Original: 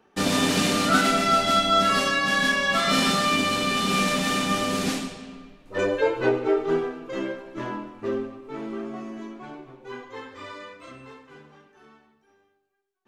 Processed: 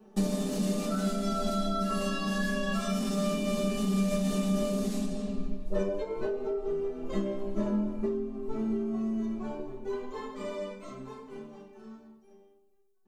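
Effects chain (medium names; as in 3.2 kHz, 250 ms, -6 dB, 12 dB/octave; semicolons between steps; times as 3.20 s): peaking EQ 2.1 kHz -14 dB 2.2 oct; comb 4.7 ms, depth 75%; peak limiter -17.5 dBFS, peak gain reduction 9 dB; compression 12:1, threshold -34 dBFS, peak gain reduction 13.5 dB; reverberation RT60 0.25 s, pre-delay 3 ms, DRR -3 dB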